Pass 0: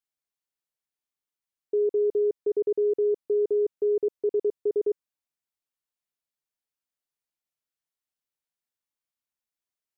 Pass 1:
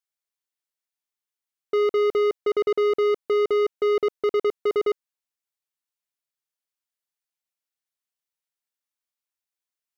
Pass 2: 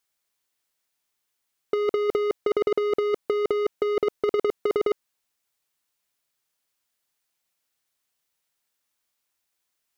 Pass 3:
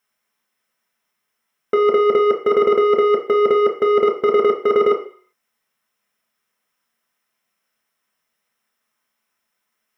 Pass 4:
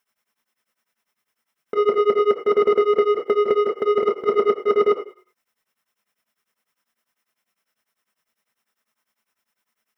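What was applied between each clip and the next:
bass shelf 470 Hz -9.5 dB; waveshaping leveller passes 3; trim +6.5 dB
compressor with a negative ratio -25 dBFS, ratio -0.5; trim +4.5 dB
reverberation RT60 0.45 s, pre-delay 3 ms, DRR 0.5 dB
in parallel at -6.5 dB: saturation -21 dBFS, distortion -6 dB; on the sum: tremolo of two beating tones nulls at 10 Hz; trim -1.5 dB

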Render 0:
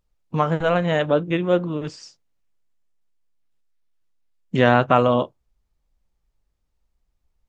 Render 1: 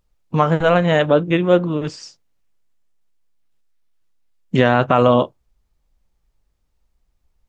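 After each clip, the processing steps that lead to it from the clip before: loudness maximiser +6 dB; trim -1 dB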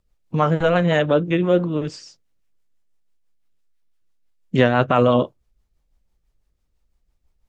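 rotary cabinet horn 6 Hz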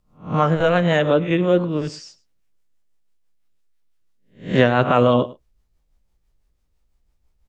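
reverse spectral sustain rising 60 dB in 0.33 s; delay 105 ms -20 dB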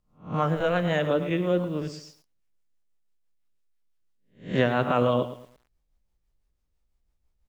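bit-crushed delay 112 ms, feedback 35%, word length 7-bit, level -13 dB; trim -7.5 dB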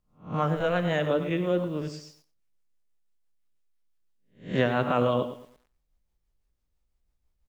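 delay 92 ms -15.5 dB; trim -1.5 dB

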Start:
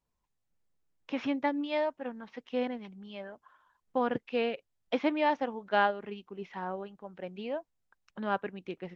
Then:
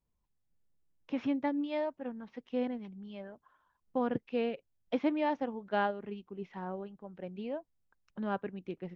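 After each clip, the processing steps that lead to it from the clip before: bass shelf 460 Hz +10.5 dB; trim -7.5 dB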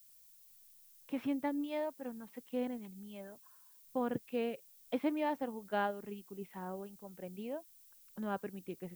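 added noise violet -58 dBFS; trim -3.5 dB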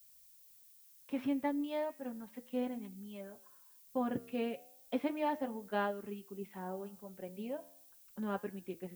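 flange 0.35 Hz, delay 9.6 ms, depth 4.5 ms, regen -89%; comb of notches 160 Hz; trim +6 dB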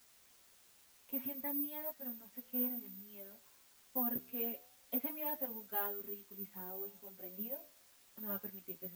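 chorus voices 4, 0.52 Hz, delay 10 ms, depth 2.8 ms; careless resampling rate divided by 3×, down none, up zero stuff; trim -5 dB

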